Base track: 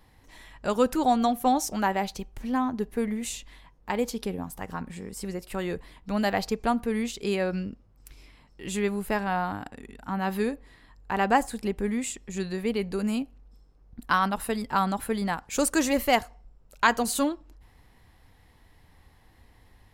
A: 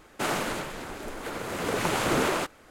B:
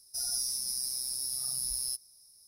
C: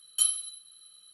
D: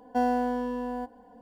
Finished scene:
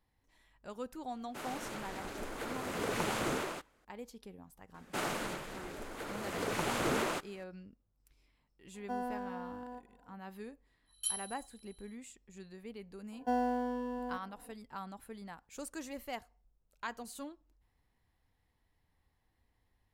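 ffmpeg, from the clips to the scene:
-filter_complex "[1:a]asplit=2[a][b];[4:a]asplit=2[c][d];[0:a]volume=-19.5dB[e];[a]dynaudnorm=f=120:g=11:m=15dB[f];[c]equalizer=f=1.2k:t=o:w=0.43:g=8.5[g];[3:a]highpass=f=1.4k:w=0.5412,highpass=f=1.4k:w=1.3066[h];[f]atrim=end=2.7,asetpts=PTS-STARTPTS,volume=-17dB,afade=t=in:d=0.004:c=hsin,afade=t=out:st=2.696:d=0.004:c=hsin,adelay=1150[i];[b]atrim=end=2.7,asetpts=PTS-STARTPTS,volume=-7.5dB,afade=t=in:d=0.004:c=hsin,afade=t=out:st=2.696:d=0.004:c=hsin,adelay=4740[j];[g]atrim=end=1.41,asetpts=PTS-STARTPTS,volume=-13.5dB,afade=t=in:d=0.004:c=hsin,afade=t=out:st=1.406:d=0.004:c=hsin,adelay=385434S[k];[h]atrim=end=1.13,asetpts=PTS-STARTPTS,volume=-11dB,afade=t=in:d=0.1,afade=t=out:st=1.03:d=0.1,adelay=10850[l];[d]atrim=end=1.41,asetpts=PTS-STARTPTS,volume=-6.5dB,afade=t=in:d=0.004:c=hsin,afade=t=out:st=1.406:d=0.004:c=hsin,adelay=13120[m];[e][i][j][k][l][m]amix=inputs=6:normalize=0"

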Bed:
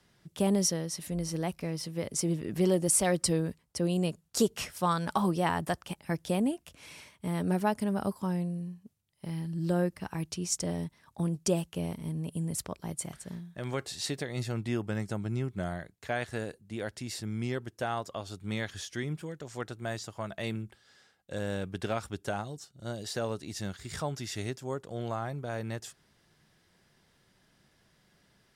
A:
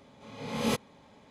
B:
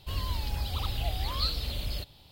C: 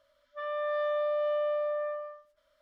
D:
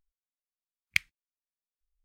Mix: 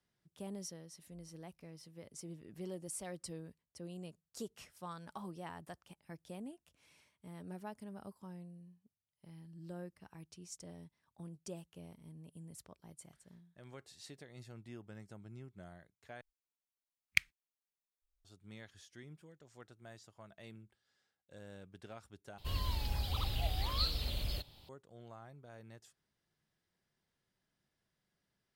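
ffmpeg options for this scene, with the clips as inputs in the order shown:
-filter_complex "[0:a]volume=-18.5dB,asplit=3[a][b][c];[a]atrim=end=16.214[d];[4:a]atrim=end=2.04,asetpts=PTS-STARTPTS,volume=-4dB[e];[b]atrim=start=18.246:end=22.384[f];[2:a]atrim=end=2.31,asetpts=PTS-STARTPTS,volume=-4.5dB[g];[c]atrim=start=24.686[h];[d][e]acrossfade=d=0.004:c1=hsin:c2=hsin[i];[i][f]acrossfade=d=0.004:c1=hsin:c2=hsin[j];[j][g]acrossfade=d=0.004:c1=hsin:c2=hsin[k];[k][h]acrossfade=d=0.004:c1=hsin:c2=hsin"

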